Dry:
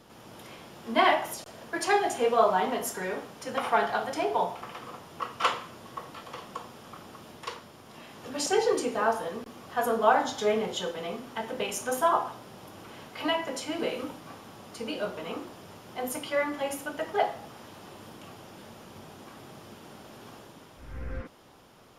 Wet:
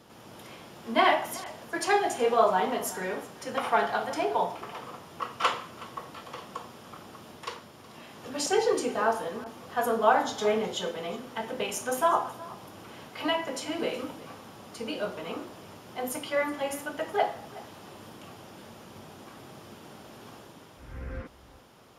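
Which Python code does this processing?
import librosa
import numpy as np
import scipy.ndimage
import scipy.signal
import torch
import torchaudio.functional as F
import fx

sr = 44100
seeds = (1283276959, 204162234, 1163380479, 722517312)

y = scipy.signal.sosfilt(scipy.signal.butter(2, 42.0, 'highpass', fs=sr, output='sos'), x)
y = y + 10.0 ** (-19.5 / 20.0) * np.pad(y, (int(370 * sr / 1000.0), 0))[:len(y)]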